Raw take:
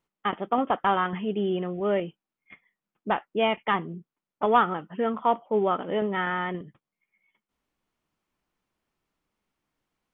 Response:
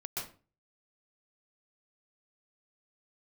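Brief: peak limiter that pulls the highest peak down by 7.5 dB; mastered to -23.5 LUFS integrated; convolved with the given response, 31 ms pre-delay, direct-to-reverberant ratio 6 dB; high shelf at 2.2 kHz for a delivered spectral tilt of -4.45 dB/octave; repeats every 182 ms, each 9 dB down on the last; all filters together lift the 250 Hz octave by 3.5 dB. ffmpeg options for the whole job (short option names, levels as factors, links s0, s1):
-filter_complex "[0:a]equalizer=f=250:t=o:g=4.5,highshelf=f=2200:g=3.5,alimiter=limit=0.2:level=0:latency=1,aecho=1:1:182|364|546|728:0.355|0.124|0.0435|0.0152,asplit=2[s0][s1];[1:a]atrim=start_sample=2205,adelay=31[s2];[s1][s2]afir=irnorm=-1:irlink=0,volume=0.422[s3];[s0][s3]amix=inputs=2:normalize=0,volume=1.26"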